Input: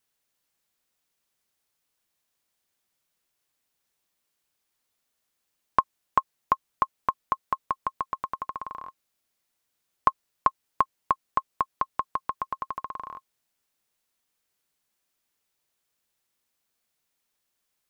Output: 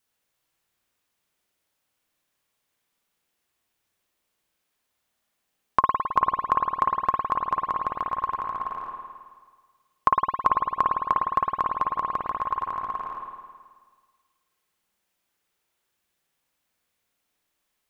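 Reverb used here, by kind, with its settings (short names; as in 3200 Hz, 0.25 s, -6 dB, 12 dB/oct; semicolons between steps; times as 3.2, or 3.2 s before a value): spring tank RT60 1.6 s, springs 53 ms, chirp 80 ms, DRR -2 dB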